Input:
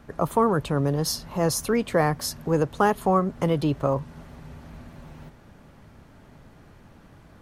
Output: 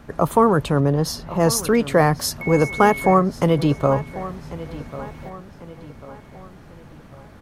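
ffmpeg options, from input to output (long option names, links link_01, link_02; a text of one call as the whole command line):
ffmpeg -i in.wav -filter_complex "[0:a]asettb=1/sr,asplit=3[link_01][link_02][link_03];[link_01]atrim=end=0.804[link_04];[link_02]atrim=start=0.8:end=1.4,asetpts=PTS-STARTPTS,afade=type=in:duration=0.004:curve=qsin,afade=type=out:start_time=0.596:duration=0.004:curve=qsin,highshelf=frequency=3600:gain=-9[link_05];[link_03]atrim=start=1.396[link_06];[link_04][link_05]acrossfade=duration=0.004:curve1=hsin:curve2=qsin[link_07];[link_07][link_06]acrossfade=duration=0.004:curve1=qsin:curve2=hsin,asettb=1/sr,asplit=3[link_08][link_09][link_10];[link_08]atrim=end=2.414[link_11];[link_09]atrim=start=2.41:end=3.14,asetpts=PTS-STARTPTS,afade=type=in:duration=0.004:curve=qsin,afade=type=out:start_time=0.726:duration=0.004:curve=qsin,aeval=exprs='val(0)+0.02*sin(2*PI*2200*n/s)':channel_layout=same[link_12];[link_10]atrim=start=3.136[link_13];[link_11][link_12]acrossfade=duration=0.004:curve1=hsin:curve2=qsin[link_14];[link_14][link_13]acrossfade=duration=0.004:curve1=qsin:curve2=hsin,asplit=2[link_15][link_16];[link_16]adelay=1094,lowpass=frequency=4700:poles=1,volume=-15.5dB,asplit=2[link_17][link_18];[link_18]adelay=1094,lowpass=frequency=4700:poles=1,volume=0.45,asplit=2[link_19][link_20];[link_20]adelay=1094,lowpass=frequency=4700:poles=1,volume=0.45,asplit=2[link_21][link_22];[link_22]adelay=1094,lowpass=frequency=4700:poles=1,volume=0.45[link_23];[link_15][link_17][link_19][link_21][link_23]amix=inputs=5:normalize=0,volume=5.5dB" out.wav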